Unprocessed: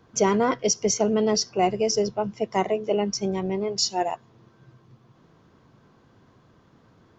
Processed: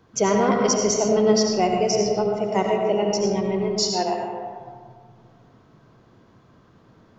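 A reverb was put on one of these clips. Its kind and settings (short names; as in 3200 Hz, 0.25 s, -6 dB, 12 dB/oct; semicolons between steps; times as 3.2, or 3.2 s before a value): digital reverb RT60 1.9 s, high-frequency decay 0.4×, pre-delay 45 ms, DRR 0.5 dB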